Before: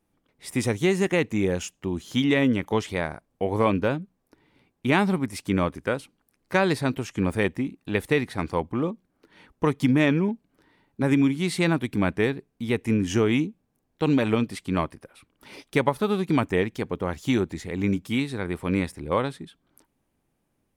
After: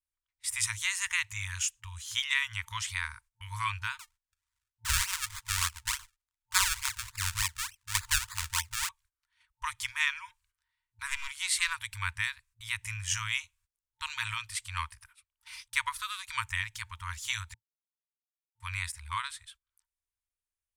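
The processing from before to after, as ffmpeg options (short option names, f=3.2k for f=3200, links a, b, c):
-filter_complex "[0:a]asettb=1/sr,asplit=3[a][b][c];[a]atrim=end=3.994[d];[b]atrim=start=3.99:end=8.89,asetpts=PTS-STARTPTS,afade=t=in:d=0.004:c=qsin,afade=t=out:st=4.896:d=0.004:c=qsin,acrusher=samples=30:mix=1:aa=0.000001:lfo=1:lforange=30:lforate=3.4[e];[c]atrim=start=8.886[f];[d][e]acrossfade=d=0.004:c1=hsin:c2=qsin[g];[g][f]acrossfade=d=0.004:c1=qsin:c2=hsin,asettb=1/sr,asplit=3[h][i][j];[h]atrim=end=11.064[k];[i]atrim=start=11.06:end=11.74,asetpts=PTS-STARTPTS,afade=t=in:d=0.004:c=qsin,afade=t=out:st=0.676:d=0.004:c=qsin,aeval=exprs='clip(val(0),-1,0.106)':c=same[l];[j]atrim=start=11.736[m];[k][l]acrossfade=d=0.004:c1=hsin:c2=qsin[n];[n][m]acrossfade=d=0.004:c1=qsin:c2=hsin,asplit=3[o][p][q];[o]atrim=end=17.54,asetpts=PTS-STARTPTS,afade=t=out:st=17.536:d=0.004:c=hsin[r];[p]atrim=start=17.54:end=18.6,asetpts=PTS-STARTPTS,volume=0[s];[q]atrim=start=18.6,asetpts=PTS-STARTPTS,afade=t=in:d=0.004:c=hsin[t];[r][s][t]concat=n=3:v=0:a=1,agate=range=-18dB:threshold=-49dB:ratio=16:detection=peak,afftfilt=real='re*(1-between(b*sr/4096,110,900))':imag='im*(1-between(b*sr/4096,110,900))':win_size=4096:overlap=0.75,equalizer=f=125:t=o:w=1:g=-11,equalizer=f=1k:t=o:w=1:g=-6,equalizer=f=8k:t=o:w=1:g=8"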